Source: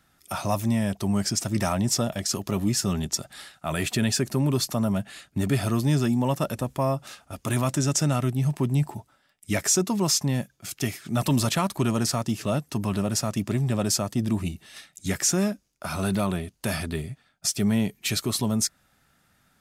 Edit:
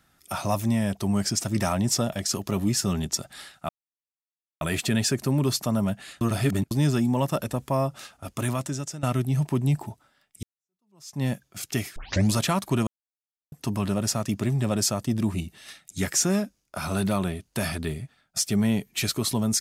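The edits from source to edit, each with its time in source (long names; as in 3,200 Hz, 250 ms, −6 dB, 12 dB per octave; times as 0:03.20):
0:03.69: splice in silence 0.92 s
0:05.29–0:05.79: reverse
0:07.37–0:08.11: fade out, to −18.5 dB
0:09.51–0:10.31: fade in exponential
0:11.04: tape start 0.37 s
0:11.95–0:12.60: silence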